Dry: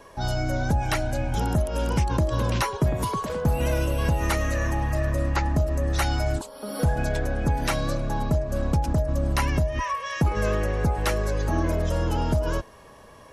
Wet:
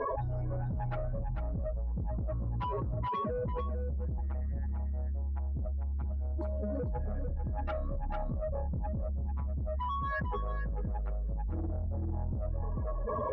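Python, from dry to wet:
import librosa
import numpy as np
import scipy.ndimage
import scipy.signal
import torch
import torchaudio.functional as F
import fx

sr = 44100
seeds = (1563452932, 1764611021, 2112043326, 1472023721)

y = fx.spec_expand(x, sr, power=3.2)
y = fx.highpass(y, sr, hz=41.0, slope=6)
y = fx.peak_eq(y, sr, hz=150.0, db=-13.5, octaves=0.21)
y = fx.comb_fb(y, sr, f0_hz=220.0, decay_s=0.65, harmonics='all', damping=0.0, mix_pct=60)
y = 10.0 ** (-35.0 / 20.0) * np.tanh(y / 10.0 ** (-35.0 / 20.0))
y = fx.air_absorb(y, sr, metres=230.0)
y = y + 10.0 ** (-6.0 / 20.0) * np.pad(y, (int(446 * sr / 1000.0), 0))[:len(y)]
y = fx.env_flatten(y, sr, amount_pct=100)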